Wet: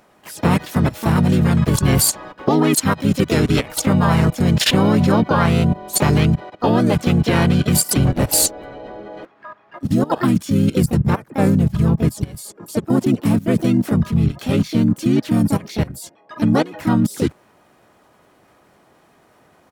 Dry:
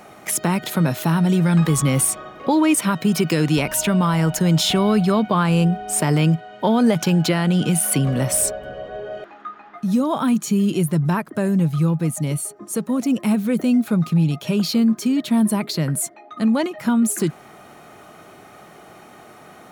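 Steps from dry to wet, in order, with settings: level held to a coarse grid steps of 20 dB; harmony voices -12 st -5 dB, -4 st -3 dB, +5 st -5 dB; trim +2.5 dB

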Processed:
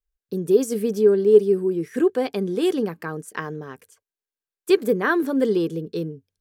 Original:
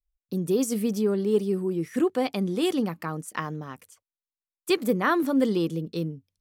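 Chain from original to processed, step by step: small resonant body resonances 420/1600 Hz, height 12 dB, ringing for 35 ms; trim -1 dB

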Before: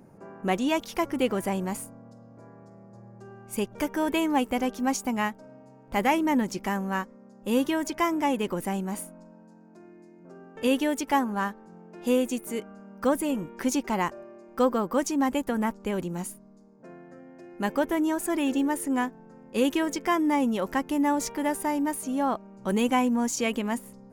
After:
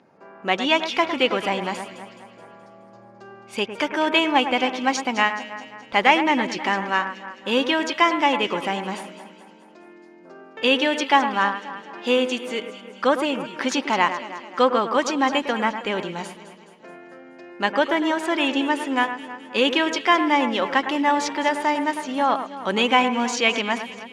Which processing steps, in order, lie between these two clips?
high-pass 760 Hz 6 dB/octave; level rider gain up to 6 dB; resonant low-pass 3.7 kHz, resonance Q 1.7; on a send: echo whose repeats swap between lows and highs 106 ms, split 2.3 kHz, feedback 71%, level -9.5 dB; on the sum: trim +3.5 dB

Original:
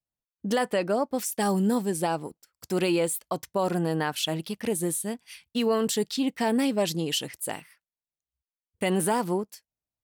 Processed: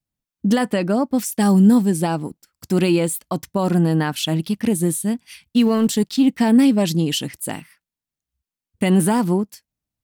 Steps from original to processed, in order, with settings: 5.62–6.28 s: companding laws mixed up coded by A; resonant low shelf 340 Hz +6.5 dB, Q 1.5; trim +4.5 dB

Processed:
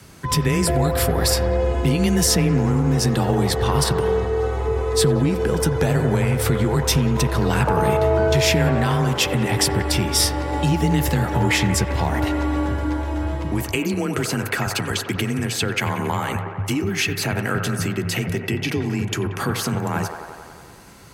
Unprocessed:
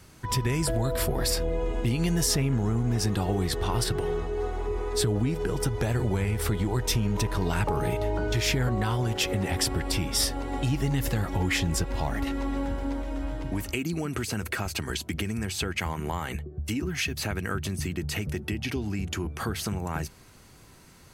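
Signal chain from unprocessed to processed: frequency shift +25 Hz; feedback echo behind a band-pass 91 ms, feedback 74%, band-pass 900 Hz, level -5.5 dB; trim +7 dB

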